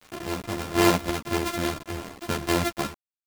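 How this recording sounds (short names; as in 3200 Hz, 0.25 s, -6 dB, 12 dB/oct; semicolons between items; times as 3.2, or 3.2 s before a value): a buzz of ramps at a fixed pitch in blocks of 128 samples; random-step tremolo, depth 55%; a quantiser's noise floor 8-bit, dither none; a shimmering, thickened sound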